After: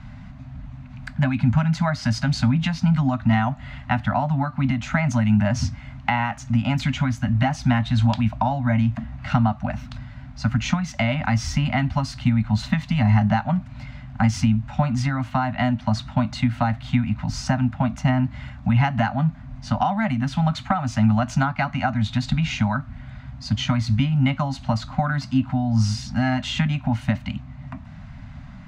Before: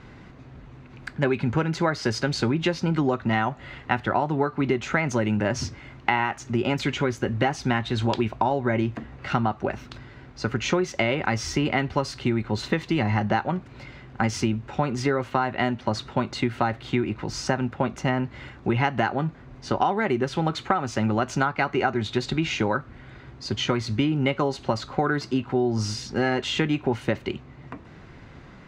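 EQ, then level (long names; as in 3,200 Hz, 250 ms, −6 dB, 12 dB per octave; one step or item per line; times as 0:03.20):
Chebyshev band-stop filter 270–590 Hz, order 5
low-shelf EQ 270 Hz +11 dB
0.0 dB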